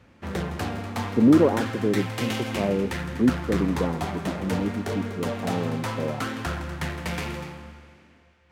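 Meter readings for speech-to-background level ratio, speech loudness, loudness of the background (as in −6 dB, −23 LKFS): 5.5 dB, −25.5 LKFS, −31.0 LKFS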